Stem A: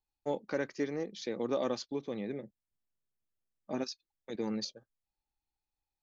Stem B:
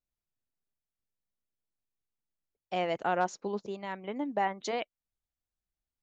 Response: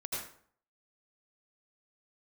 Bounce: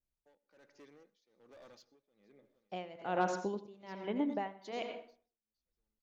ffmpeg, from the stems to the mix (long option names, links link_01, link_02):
-filter_complex "[0:a]lowshelf=frequency=420:gain=-8,asoftclip=type=hard:threshold=-36dB,volume=-17.5dB,asplit=3[link_01][link_02][link_03];[link_02]volume=-15.5dB[link_04];[link_03]volume=-19dB[link_05];[1:a]tiltshelf=frequency=690:gain=4.5,volume=-4dB,asplit=2[link_06][link_07];[link_07]volume=-6dB[link_08];[2:a]atrim=start_sample=2205[link_09];[link_04][link_08]amix=inputs=2:normalize=0[link_10];[link_10][link_09]afir=irnorm=-1:irlink=0[link_11];[link_05]aecho=0:1:462|924|1386|1848|2310|2772:1|0.41|0.168|0.0689|0.0283|0.0116[link_12];[link_01][link_06][link_11][link_12]amix=inputs=4:normalize=0,adynamicequalizer=threshold=0.00178:dfrequency=3400:dqfactor=0.97:tfrequency=3400:tqfactor=0.97:attack=5:release=100:ratio=0.375:range=3.5:mode=boostabove:tftype=bell,tremolo=f=1.2:d=0.9"